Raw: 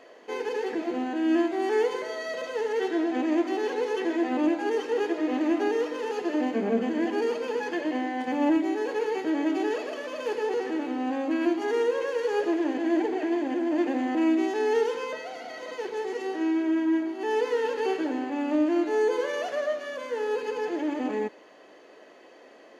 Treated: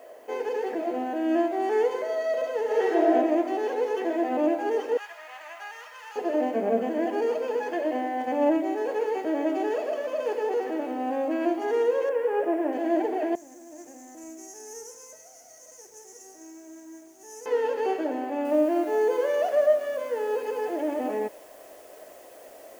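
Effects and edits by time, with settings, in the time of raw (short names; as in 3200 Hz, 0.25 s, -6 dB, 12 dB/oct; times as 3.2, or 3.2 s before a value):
2.64–3.13 reverb throw, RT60 1 s, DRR -4 dB
4.97–6.16 HPF 1100 Hz 24 dB/oct
12.09–12.73 LPF 2600 Hz 24 dB/oct
13.35–17.46 EQ curve 110 Hz 0 dB, 220 Hz -17 dB, 540 Hz -22 dB, 2100 Hz -18 dB, 3800 Hz -29 dB, 5700 Hz +13 dB
18.45 noise floor step -62 dB -52 dB
whole clip: fifteen-band EQ 160 Hz -4 dB, 630 Hz +12 dB, 4000 Hz -5 dB; gain -3 dB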